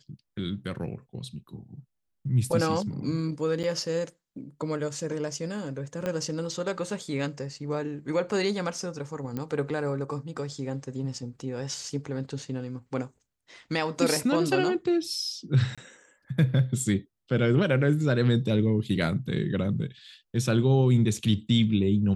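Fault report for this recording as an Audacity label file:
3.630000	3.640000	gap 8.1 ms
6.060000	6.060000	pop -17 dBFS
9.370000	9.370000	pop -20 dBFS
15.750000	15.780000	gap 26 ms

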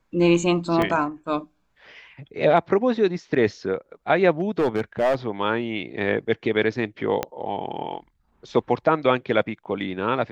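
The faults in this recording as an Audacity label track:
0.820000	0.820000	gap 2.1 ms
4.400000	5.150000	clipped -16 dBFS
7.230000	7.230000	pop -9 dBFS

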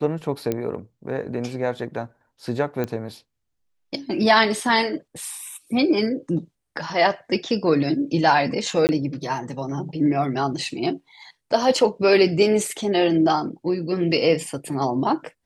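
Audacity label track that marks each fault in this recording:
0.520000	0.520000	pop -11 dBFS
2.840000	2.840000	pop -14 dBFS
8.870000	8.890000	gap 19 ms

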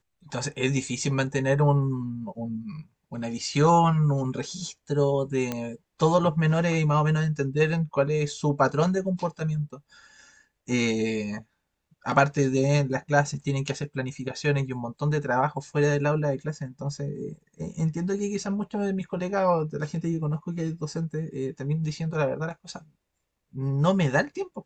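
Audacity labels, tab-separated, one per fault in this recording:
5.520000	5.520000	pop -14 dBFS

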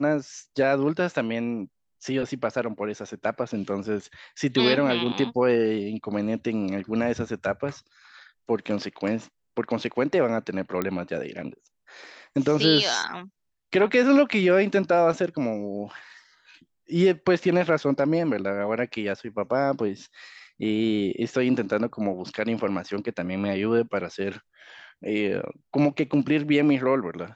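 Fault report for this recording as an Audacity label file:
10.820000	10.820000	pop -13 dBFS

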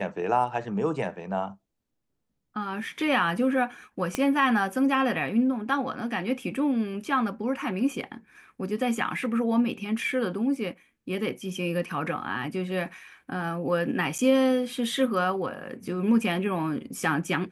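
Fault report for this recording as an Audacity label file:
4.150000	4.150000	pop -12 dBFS
14.180000	14.190000	gap 8 ms

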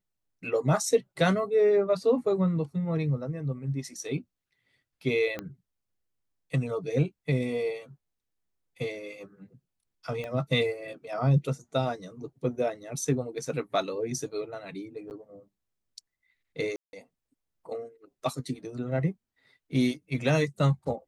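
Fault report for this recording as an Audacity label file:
5.390000	5.390000	pop -20 dBFS
10.240000	10.240000	pop -24 dBFS
15.100000	15.110000	gap 9.3 ms
16.760000	16.930000	gap 0.171 s

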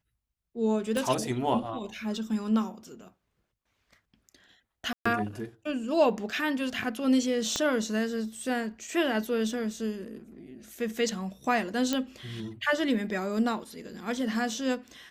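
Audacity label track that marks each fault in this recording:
0.970000	0.970000	pop -19 dBFS
4.930000	5.050000	gap 0.125 s
7.560000	7.560000	pop -14 dBFS
11.930000	11.930000	pop -13 dBFS

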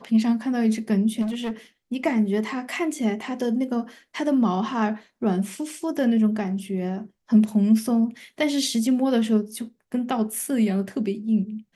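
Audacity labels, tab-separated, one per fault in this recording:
1.210000	1.510000	clipped -24 dBFS

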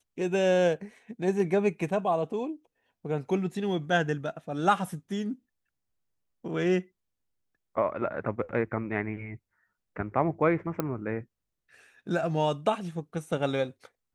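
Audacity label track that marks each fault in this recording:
10.800000	10.800000	pop -15 dBFS

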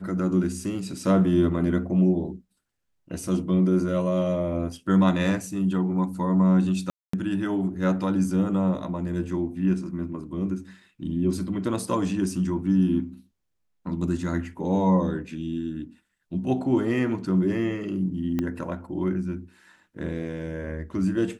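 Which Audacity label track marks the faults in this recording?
6.900000	7.130000	gap 0.234 s
18.390000	18.390000	pop -15 dBFS

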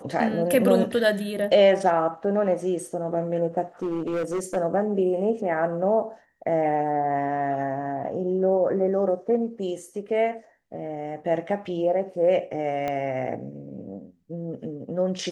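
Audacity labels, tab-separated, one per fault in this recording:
3.820000	4.570000	clipped -23 dBFS
12.880000	12.880000	pop -16 dBFS

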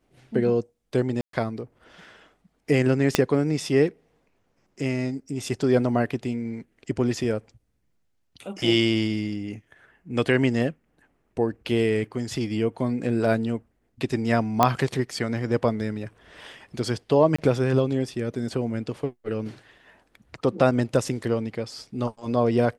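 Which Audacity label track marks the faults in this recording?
1.210000	1.330000	gap 0.123 s
3.150000	3.150000	pop -3 dBFS
14.630000	14.630000	pop -4 dBFS
17.360000	17.390000	gap 25 ms

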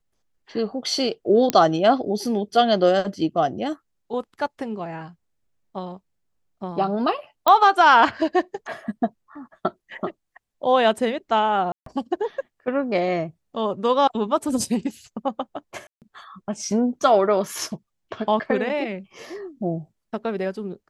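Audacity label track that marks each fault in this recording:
1.500000	1.500000	pop -5 dBFS
7.480000	7.480000	pop -5 dBFS
11.720000	11.860000	gap 0.143 s
15.870000	16.020000	gap 0.148 s

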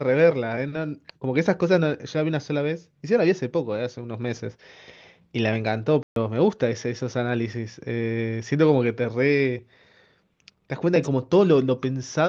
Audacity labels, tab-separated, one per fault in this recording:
6.030000	6.160000	gap 0.132 s

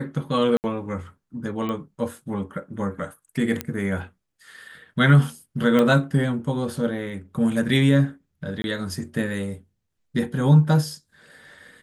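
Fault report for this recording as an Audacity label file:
0.570000	0.640000	gap 69 ms
1.690000	1.690000	pop -17 dBFS
3.610000	3.610000	pop -10 dBFS
5.790000	5.790000	pop -10 dBFS
8.620000	8.640000	gap 21 ms

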